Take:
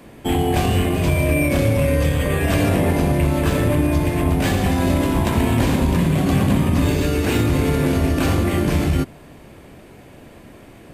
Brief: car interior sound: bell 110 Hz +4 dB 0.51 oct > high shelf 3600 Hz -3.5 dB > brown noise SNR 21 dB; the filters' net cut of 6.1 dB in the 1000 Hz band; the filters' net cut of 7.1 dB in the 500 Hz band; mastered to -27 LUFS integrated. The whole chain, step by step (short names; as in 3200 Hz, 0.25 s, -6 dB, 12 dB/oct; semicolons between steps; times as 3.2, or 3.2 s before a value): bell 110 Hz +4 dB 0.51 oct; bell 500 Hz -8.5 dB; bell 1000 Hz -4.5 dB; high shelf 3600 Hz -3.5 dB; brown noise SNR 21 dB; gain -7.5 dB